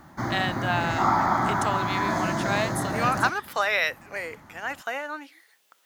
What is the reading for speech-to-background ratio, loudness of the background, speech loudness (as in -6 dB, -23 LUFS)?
-2.0 dB, -26.5 LUFS, -28.5 LUFS